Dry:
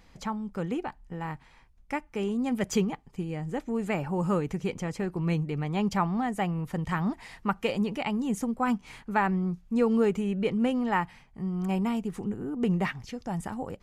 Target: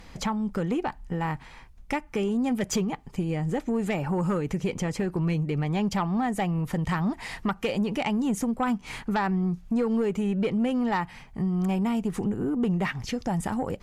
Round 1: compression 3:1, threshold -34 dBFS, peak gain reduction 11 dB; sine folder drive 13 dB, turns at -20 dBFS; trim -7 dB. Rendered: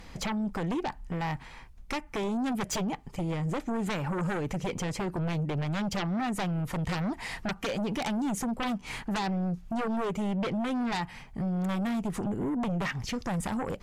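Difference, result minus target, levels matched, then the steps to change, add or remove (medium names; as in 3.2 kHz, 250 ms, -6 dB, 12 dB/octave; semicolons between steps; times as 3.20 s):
sine folder: distortion +15 dB
change: sine folder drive 13 dB, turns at -12 dBFS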